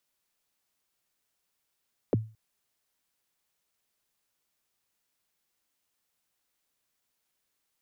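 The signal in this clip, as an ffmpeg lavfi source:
-f lavfi -i "aevalsrc='0.126*pow(10,-3*t/0.33)*sin(2*PI*(600*0.021/log(110/600)*(exp(log(110/600)*min(t,0.021)/0.021)-1)+110*max(t-0.021,0)))':d=0.22:s=44100"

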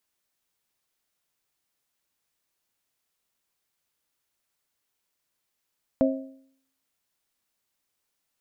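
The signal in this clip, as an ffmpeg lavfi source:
-f lavfi -i "aevalsrc='0.133*pow(10,-3*t/0.64)*sin(2*PI*267*t)+0.1*pow(10,-3*t/0.52)*sin(2*PI*534*t)+0.075*pow(10,-3*t/0.492)*sin(2*PI*640.8*t)':d=1.55:s=44100"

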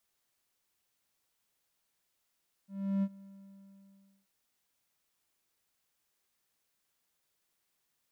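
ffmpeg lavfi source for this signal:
-f lavfi -i "aevalsrc='0.0631*(1-4*abs(mod(196*t+0.25,1)-0.5))':d=1.59:s=44100,afade=t=in:d=0.35,afade=t=out:st=0.35:d=0.052:silence=0.0708,afade=t=out:st=0.56:d=1.03"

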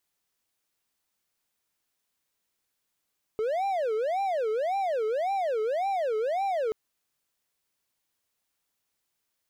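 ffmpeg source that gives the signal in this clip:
-f lavfi -i "aevalsrc='0.0708*(1-4*abs(mod((611.5*t-182.5/(2*PI*1.8)*sin(2*PI*1.8*t))+0.25,1)-0.5))':d=3.33:s=44100"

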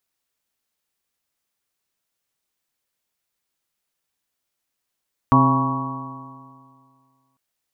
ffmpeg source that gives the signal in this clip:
-f lavfi -i "aevalsrc='0.158*pow(10,-3*t/2.09)*sin(2*PI*131.14*t)+0.188*pow(10,-3*t/2.09)*sin(2*PI*263.15*t)+0.0282*pow(10,-3*t/2.09)*sin(2*PI*396.87*t)+0.0266*pow(10,-3*t/2.09)*sin(2*PI*533.14*t)+0.0447*pow(10,-3*t/2.09)*sin(2*PI*672.77*t)+0.0562*pow(10,-3*t/2.09)*sin(2*PI*816.53*t)+0.126*pow(10,-3*t/2.09)*sin(2*PI*965.16*t)+0.2*pow(10,-3*t/2.09)*sin(2*PI*1119.35*t)':d=2.05:s=44100"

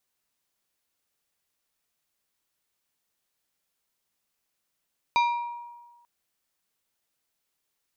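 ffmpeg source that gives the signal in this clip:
-f lavfi -i "aevalsrc='0.126*pow(10,-3*t/1.34)*sin(2*PI*952*t)+0.0596*pow(10,-3*t/0.706)*sin(2*PI*2380*t)+0.0282*pow(10,-3*t/0.508)*sin(2*PI*3808*t)+0.0133*pow(10,-3*t/0.434)*sin(2*PI*4760*t)+0.00631*pow(10,-3*t/0.361)*sin(2*PI*6188*t)':d=0.89:s=44100"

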